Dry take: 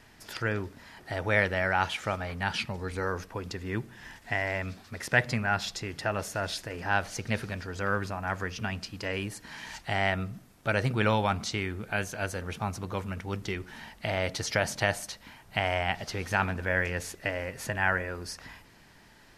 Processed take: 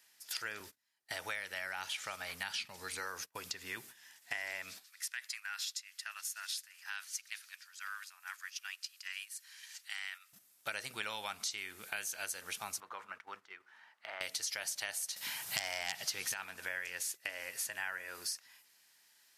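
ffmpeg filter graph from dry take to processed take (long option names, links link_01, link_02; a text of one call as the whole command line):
ffmpeg -i in.wav -filter_complex "[0:a]asettb=1/sr,asplit=3[link_01][link_02][link_03];[link_01]atrim=end=0.604[link_04];[link_02]atrim=start=0.6:end=3.77,asetpts=PTS-STARTPTS,afade=type=in:duration=0.004:curve=qsin,afade=type=out:start_time=3.166:duration=0.004:curve=qsin,agate=range=-22dB:threshold=-45dB:ratio=16:release=100:detection=peak,acrossover=split=540|6200[link_05][link_06][link_07];[link_05]acompressor=threshold=-36dB:ratio=4[link_08];[link_06]acompressor=threshold=-27dB:ratio=4[link_09];[link_07]acompressor=threshold=-56dB:ratio=4[link_10];[link_08][link_09][link_10]amix=inputs=3:normalize=0,lowshelf=frequency=210:gain=8[link_11];[link_03]atrim=start=3.766[link_12];[link_04][link_11]acrossfade=duration=0.004:curve1=hsin:curve2=qsin[link_13];[link_13][link_12]acrossfade=duration=0.004:curve1=qsin:curve2=hsin,asettb=1/sr,asplit=3[link_14][link_15][link_16];[link_14]atrim=end=4.844[link_17];[link_15]atrim=start=4.84:end=10.33,asetpts=PTS-STARTPTS,afade=type=in:duration=0.004:curve=qsin,afade=type=out:start_time=5.486:duration=0.004:curve=qsin,highpass=frequency=1200:width=0.5412,highpass=frequency=1200:width=1.3066,acompressor=threshold=-41dB:ratio=2:attack=3.2:release=140:knee=1:detection=peak[link_18];[link_16]atrim=start=10.326[link_19];[link_17][link_18]acrossfade=duration=0.004:curve1=hsin:curve2=qsin[link_20];[link_20][link_19]acrossfade=duration=0.004:curve1=qsin:curve2=hsin,asettb=1/sr,asplit=3[link_21][link_22][link_23];[link_21]atrim=end=12.804[link_24];[link_22]atrim=start=12.8:end=14.21,asetpts=PTS-STARTPTS,afade=type=in:duration=0.004:curve=qsin,afade=type=out:start_time=1.406:duration=0.004:curve=qsin,aemphasis=mode=production:type=riaa,acompressor=threshold=-37dB:ratio=2.5:attack=3.2:release=140:knee=1:detection=peak,lowpass=frequency=1300:width_type=q:width=1.6[link_25];[link_23]atrim=start=14.206[link_26];[link_24][link_25]acrossfade=duration=0.004:curve1=hsin:curve2=qsin[link_27];[link_27][link_26]acrossfade=duration=0.004:curve1=qsin:curve2=hsin,asettb=1/sr,asplit=3[link_28][link_29][link_30];[link_28]atrim=end=15.164[link_31];[link_29]atrim=start=15.16:end=16.34,asetpts=PTS-STARTPTS,afade=type=in:duration=0.004:curve=qsin,afade=type=out:start_time=1.176:duration=0.004:curve=qsin,aeval=exprs='0.316*sin(PI/2*2.51*val(0)/0.316)':channel_layout=same,equalizer=frequency=140:width_type=o:width=0.65:gain=9.5[link_32];[link_30]atrim=start=16.336[link_33];[link_31][link_32]acrossfade=duration=0.004:curve1=hsin:curve2=qsin[link_34];[link_34][link_33]acrossfade=duration=0.004:curve1=qsin:curve2=hsin,agate=range=-13dB:threshold=-42dB:ratio=16:detection=peak,aderivative,acompressor=threshold=-49dB:ratio=4,volume=11.5dB" out.wav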